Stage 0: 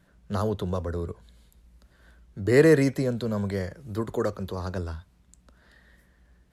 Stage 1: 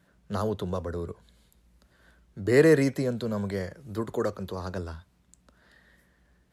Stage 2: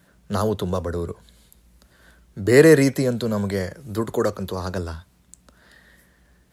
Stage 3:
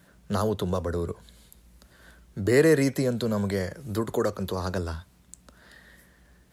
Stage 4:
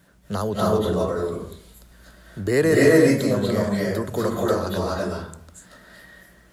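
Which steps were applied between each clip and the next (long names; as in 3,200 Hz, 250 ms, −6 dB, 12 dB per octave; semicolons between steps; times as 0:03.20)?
high-pass filter 99 Hz 6 dB per octave; level −1 dB
high-shelf EQ 6,200 Hz +7.5 dB; level +6.5 dB
downward compressor 1.5 to 1, threshold −28 dBFS, peak gain reduction 7.5 dB
convolution reverb RT60 0.60 s, pre-delay 204 ms, DRR −5 dB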